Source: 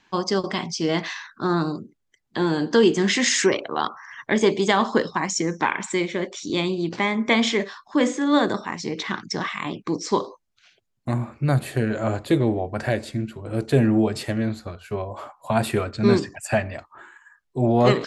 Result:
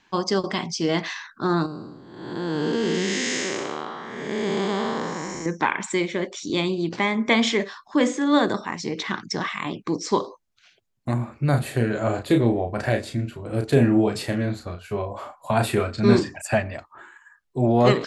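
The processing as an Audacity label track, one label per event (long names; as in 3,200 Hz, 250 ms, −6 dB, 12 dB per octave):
1.660000	5.460000	spectrum smeared in time width 418 ms
11.500000	16.420000	double-tracking delay 34 ms −6 dB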